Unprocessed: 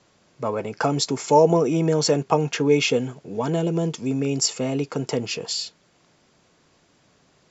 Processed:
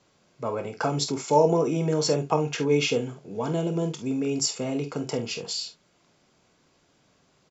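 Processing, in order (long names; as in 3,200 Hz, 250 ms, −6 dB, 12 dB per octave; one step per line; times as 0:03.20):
notch filter 1,800 Hz, Q 18
ambience of single reflections 26 ms −11 dB, 48 ms −10.5 dB, 69 ms −17 dB
level −4.5 dB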